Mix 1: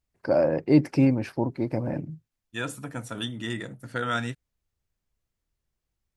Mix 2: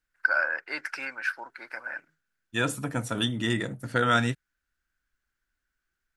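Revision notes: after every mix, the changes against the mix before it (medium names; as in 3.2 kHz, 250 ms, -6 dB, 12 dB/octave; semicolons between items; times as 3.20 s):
first voice: add resonant high-pass 1.5 kHz, resonance Q 11; second voice +5.0 dB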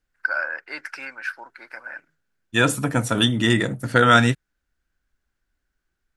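second voice +8.5 dB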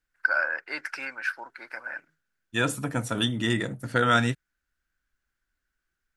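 second voice -7.0 dB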